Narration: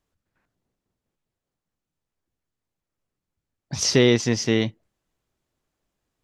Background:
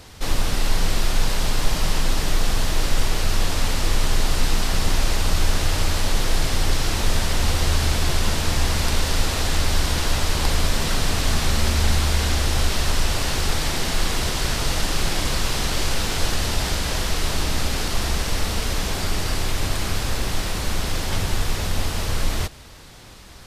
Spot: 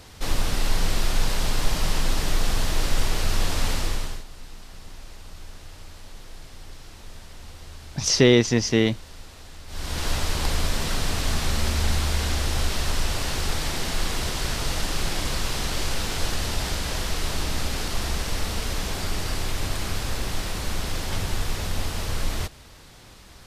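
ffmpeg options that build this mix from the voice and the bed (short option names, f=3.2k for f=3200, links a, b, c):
-filter_complex "[0:a]adelay=4250,volume=1dB[a];[1:a]volume=15.5dB,afade=t=out:st=3.72:d=0.52:silence=0.105925,afade=t=in:st=9.67:d=0.41:silence=0.125893[b];[a][b]amix=inputs=2:normalize=0"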